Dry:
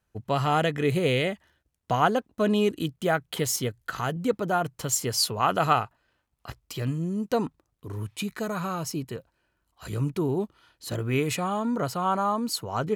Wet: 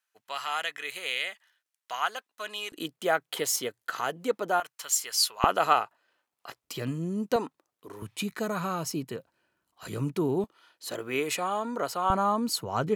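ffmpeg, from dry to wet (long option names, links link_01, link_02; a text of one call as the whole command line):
ffmpeg -i in.wav -af "asetnsamples=nb_out_samples=441:pad=0,asendcmd='2.72 highpass f 400;4.6 highpass f 1300;5.44 highpass f 400;6.64 highpass f 180;7.36 highpass f 380;8.02 highpass f 160;10.44 highpass f 380;12.1 highpass f 100',highpass=1400" out.wav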